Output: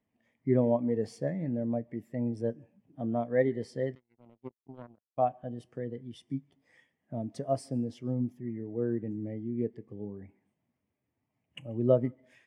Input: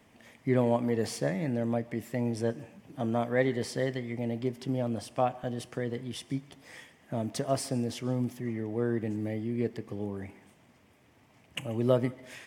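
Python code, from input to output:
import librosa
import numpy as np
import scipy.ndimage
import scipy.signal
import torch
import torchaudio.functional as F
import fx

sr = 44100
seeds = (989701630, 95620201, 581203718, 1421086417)

y = fx.power_curve(x, sr, exponent=3.0, at=(3.95, 5.18))
y = fx.spectral_expand(y, sr, expansion=1.5)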